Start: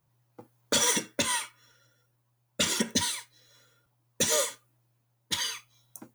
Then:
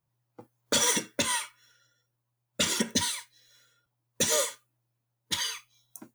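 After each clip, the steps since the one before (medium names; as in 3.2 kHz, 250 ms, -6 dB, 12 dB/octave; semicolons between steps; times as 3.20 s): spectral noise reduction 8 dB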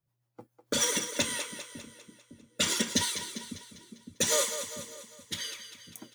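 rotary cabinet horn 7 Hz, later 0.6 Hz, at 0.76 s; two-band feedback delay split 340 Hz, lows 558 ms, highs 199 ms, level -9.5 dB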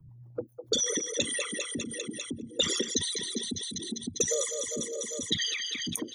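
resonances exaggerated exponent 3; three bands compressed up and down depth 100%; trim +1.5 dB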